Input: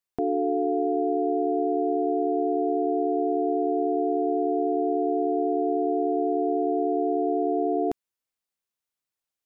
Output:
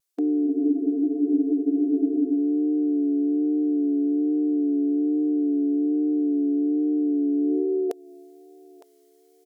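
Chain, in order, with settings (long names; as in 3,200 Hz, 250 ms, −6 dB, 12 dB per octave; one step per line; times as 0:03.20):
bass and treble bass −12 dB, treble +10 dB
repeating echo 910 ms, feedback 25%, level −20 dB
high-pass filter sweep 280 Hz → 820 Hz, 0:07.33–0:08.31
formants moved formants −3 semitones
pitch vibrato 1.2 Hz 35 cents
frozen spectrum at 0:00.48, 1.87 s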